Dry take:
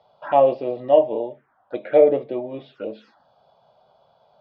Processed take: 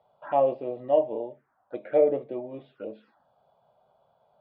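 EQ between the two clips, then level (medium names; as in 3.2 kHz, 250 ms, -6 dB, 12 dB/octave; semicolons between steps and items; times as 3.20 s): distance through air 310 m; -6.0 dB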